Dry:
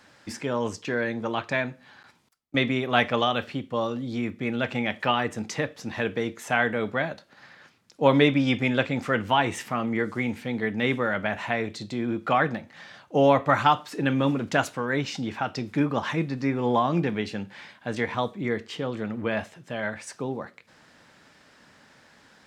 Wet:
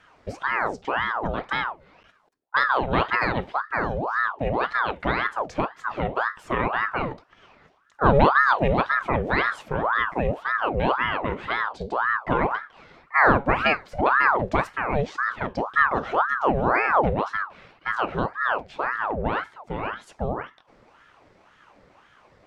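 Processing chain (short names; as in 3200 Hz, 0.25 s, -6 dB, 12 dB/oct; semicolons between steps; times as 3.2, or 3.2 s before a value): tilt -3.5 dB/oct; ring modulator with a swept carrier 910 Hz, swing 70%, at 1.9 Hz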